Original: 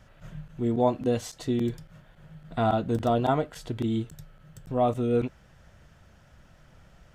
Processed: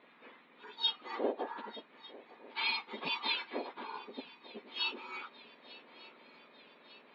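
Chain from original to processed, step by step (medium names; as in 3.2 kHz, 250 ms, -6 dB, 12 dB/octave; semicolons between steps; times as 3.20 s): spectrum inverted on a logarithmic axis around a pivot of 1.8 kHz; Chebyshev low-pass 3.9 kHz, order 6; shuffle delay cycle 1200 ms, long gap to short 3:1, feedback 59%, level -20 dB; trim +4 dB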